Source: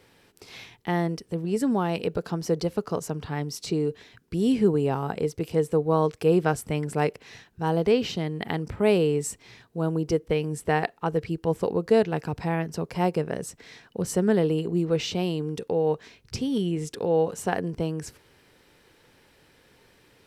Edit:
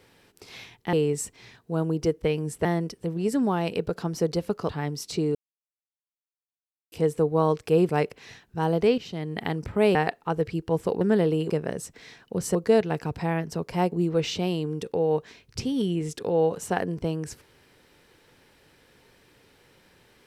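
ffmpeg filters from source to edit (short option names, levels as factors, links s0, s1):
-filter_complex "[0:a]asplit=13[s0][s1][s2][s3][s4][s5][s6][s7][s8][s9][s10][s11][s12];[s0]atrim=end=0.932[s13];[s1]atrim=start=8.988:end=10.712[s14];[s2]atrim=start=0.928:end=2.972[s15];[s3]atrim=start=3.228:end=3.89,asetpts=PTS-STARTPTS,afade=t=out:st=0.658:d=0.004:c=hsin[s16];[s4]atrim=start=3.89:end=5.46,asetpts=PTS-STARTPTS,volume=0[s17];[s5]atrim=start=5.46:end=6.432,asetpts=PTS-STARTPTS,afade=t=in:d=0.004:c=hsin[s18];[s6]atrim=start=6.928:end=8.02,asetpts=PTS-STARTPTS,afade=t=out:st=1.088:d=0.004:c=hsin:silence=0.211349[s19];[s7]atrim=start=8.02:end=8.992,asetpts=PTS-STARTPTS,afade=t=in:d=0.37:silence=0.211349[s20];[s8]atrim=start=10.708:end=11.772[s21];[s9]atrim=start=14.188:end=14.682[s22];[s10]atrim=start=13.138:end=14.192[s23];[s11]atrim=start=11.768:end=13.142[s24];[s12]atrim=start=14.678[s25];[s13][s14]acrossfade=d=0.004:c1=hsin:c2=hsin[s26];[s26][s15]acrossfade=d=0.004:c1=hsin:c2=hsin[s27];[s16][s17][s18]concat=n=3:v=0:a=1[s28];[s27][s28]acrossfade=d=0.004:c1=hsin:c2=hsin[s29];[s19][s20]concat=n=2:v=0:a=1[s30];[s29][s30]acrossfade=d=0.004:c1=hsin:c2=hsin[s31];[s31][s21]acrossfade=d=0.004:c1=hsin:c2=hsin[s32];[s32][s22]acrossfade=d=0.004:c1=hsin:c2=hsin[s33];[s33][s23]acrossfade=d=0.004:c1=hsin:c2=hsin[s34];[s34][s24]acrossfade=d=0.004:c1=hsin:c2=hsin[s35];[s35][s25]acrossfade=d=0.004:c1=hsin:c2=hsin"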